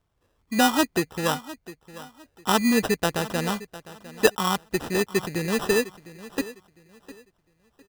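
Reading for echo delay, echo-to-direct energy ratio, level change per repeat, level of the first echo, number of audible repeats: 0.705 s, -16.5 dB, -11.5 dB, -17.0 dB, 2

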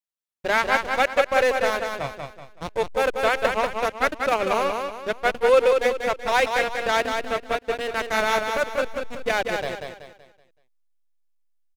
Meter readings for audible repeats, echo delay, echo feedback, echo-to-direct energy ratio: 4, 0.189 s, 37%, -4.5 dB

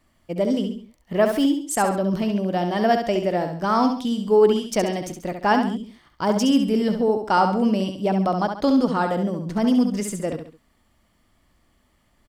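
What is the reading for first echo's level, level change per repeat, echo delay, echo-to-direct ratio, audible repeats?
-6.5 dB, -8.0 dB, 68 ms, -6.0 dB, 3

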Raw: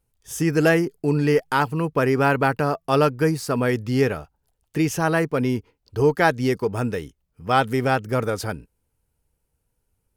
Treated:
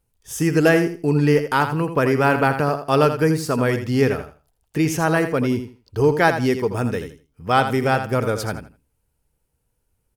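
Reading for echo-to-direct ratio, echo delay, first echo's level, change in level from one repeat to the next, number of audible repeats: -9.5 dB, 82 ms, -9.5 dB, -13.5 dB, 2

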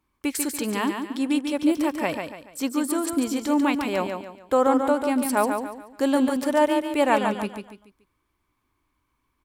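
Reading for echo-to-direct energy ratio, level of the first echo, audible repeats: -5.5 dB, -6.0 dB, 4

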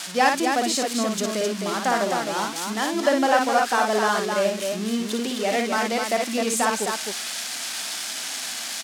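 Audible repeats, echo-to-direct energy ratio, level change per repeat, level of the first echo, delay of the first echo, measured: 2, -1.5 dB, no steady repeat, -4.5 dB, 56 ms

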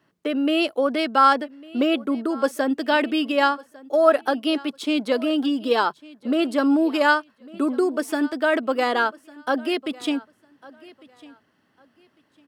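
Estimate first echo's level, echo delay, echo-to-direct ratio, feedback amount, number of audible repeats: -22.0 dB, 1.151 s, -22.0 dB, 24%, 2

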